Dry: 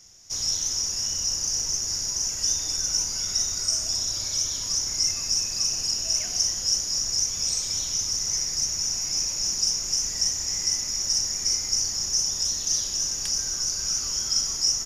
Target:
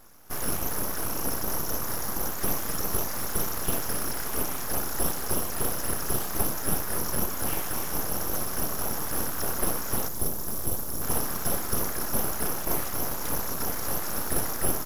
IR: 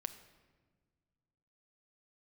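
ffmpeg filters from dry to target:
-filter_complex "[0:a]aeval=exprs='abs(val(0))':channel_layout=same,asettb=1/sr,asplit=3[link_01][link_02][link_03];[link_01]atrim=end=10.084[link_04];[link_02]atrim=start=10.08:end=11.02,asetpts=PTS-STARTPTS,afade=type=in:duration=0.004:curve=qsin,afade=type=out:start_time=0.936:duration=0.004:curve=qsin,equalizer=frequency=1900:width=0.51:gain=-10[link_05];[link_03]atrim=start=11.016[link_06];[link_04][link_05]acrossfade=duration=0.004:curve1=hsin:curve2=qsin[link_07];[link_07][link_06]acrossfade=duration=0.004:curve1=qsin:curve2=hsin"

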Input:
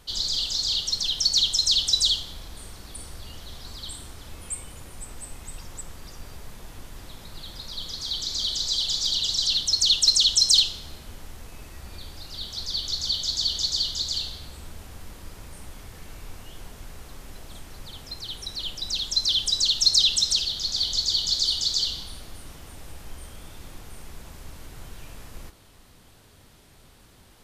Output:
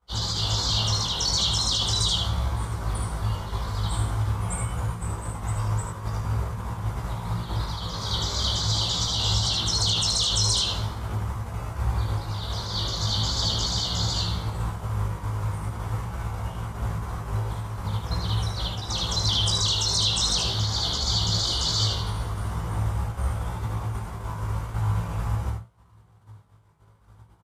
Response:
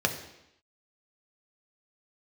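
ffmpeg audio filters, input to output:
-filter_complex "[0:a]equalizer=frequency=250:width_type=o:width=1:gain=-10,equalizer=frequency=1000:width_type=o:width=1:gain=11,equalizer=frequency=4000:width_type=o:width=1:gain=-5,equalizer=frequency=8000:width_type=o:width=1:gain=5,flanger=delay=16.5:depth=3.6:speed=0.43,bass=frequency=250:gain=12,treble=frequency=4000:gain=-10,alimiter=level_in=1dB:limit=-24dB:level=0:latency=1:release=10,volume=-1dB,highpass=71,asplit=2[link_01][link_02];[link_02]adelay=18,volume=-6dB[link_03];[link_01][link_03]amix=inputs=2:normalize=0,aecho=1:1:76:0.631,agate=range=-33dB:threshold=-36dB:ratio=3:detection=peak,asplit=2[link_04][link_05];[1:a]atrim=start_sample=2205,afade=type=out:start_time=0.15:duration=0.01,atrim=end_sample=7056,lowshelf=frequency=420:gain=11.5[link_06];[link_05][link_06]afir=irnorm=-1:irlink=0,volume=-20dB[link_07];[link_04][link_07]amix=inputs=2:normalize=0,volume=7.5dB" -ar 44100 -c:a aac -b:a 64k

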